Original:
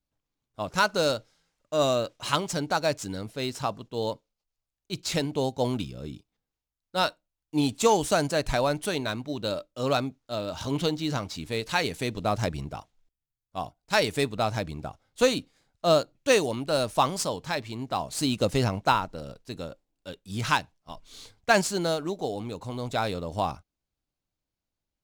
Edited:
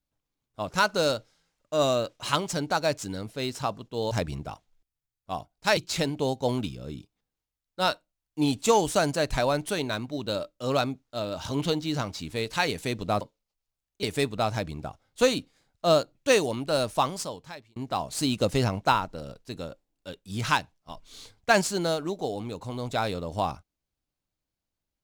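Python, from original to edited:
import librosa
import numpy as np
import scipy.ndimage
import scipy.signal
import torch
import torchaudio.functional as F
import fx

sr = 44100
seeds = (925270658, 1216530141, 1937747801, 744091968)

y = fx.edit(x, sr, fx.swap(start_s=4.11, length_s=0.82, other_s=12.37, other_length_s=1.66),
    fx.fade_out_span(start_s=16.85, length_s=0.91), tone=tone)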